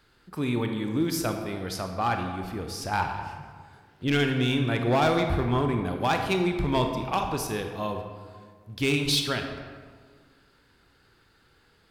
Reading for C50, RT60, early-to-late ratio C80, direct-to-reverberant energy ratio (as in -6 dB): 5.5 dB, 1.7 s, 7.0 dB, 4.5 dB